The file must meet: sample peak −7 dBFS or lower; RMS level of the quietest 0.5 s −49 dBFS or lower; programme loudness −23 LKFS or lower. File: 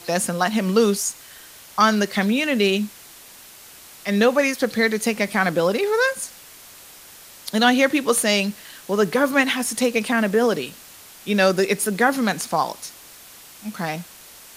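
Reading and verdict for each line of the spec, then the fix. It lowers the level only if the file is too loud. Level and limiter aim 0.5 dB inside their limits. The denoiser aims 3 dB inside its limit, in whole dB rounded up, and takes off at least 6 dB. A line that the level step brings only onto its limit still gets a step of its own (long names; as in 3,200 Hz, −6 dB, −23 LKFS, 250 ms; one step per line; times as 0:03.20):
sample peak −3.5 dBFS: out of spec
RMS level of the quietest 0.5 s −44 dBFS: out of spec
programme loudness −20.5 LKFS: out of spec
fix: broadband denoise 6 dB, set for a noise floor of −44 dBFS
level −3 dB
brickwall limiter −7.5 dBFS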